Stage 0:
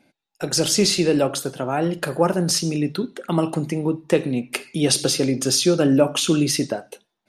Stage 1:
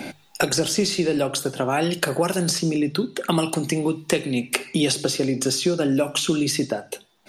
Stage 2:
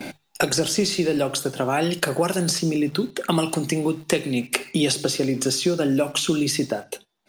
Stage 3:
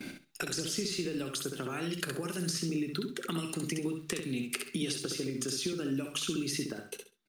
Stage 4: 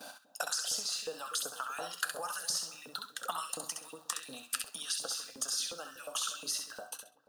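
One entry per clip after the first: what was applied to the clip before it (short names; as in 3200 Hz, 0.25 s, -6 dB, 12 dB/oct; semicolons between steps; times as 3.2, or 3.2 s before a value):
notches 50/100/150 Hz; resonator 390 Hz, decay 0.2 s, harmonics all, mix 40%; three-band squash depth 100%; gain +1.5 dB
gate -40 dBFS, range -11 dB; in parallel at -10 dB: requantised 6-bit, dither none; on the sum: gain -2.5 dB
compressor, threshold -22 dBFS, peak gain reduction 7.5 dB; band shelf 710 Hz -10.5 dB 1.1 oct; on a send: feedback echo 66 ms, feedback 21%, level -5.5 dB; on the sum: gain -8.5 dB
LFO high-pass saw up 2.8 Hz 470–2300 Hz; fixed phaser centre 900 Hz, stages 4; dark delay 0.242 s, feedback 50%, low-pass 830 Hz, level -14 dB; gain +3.5 dB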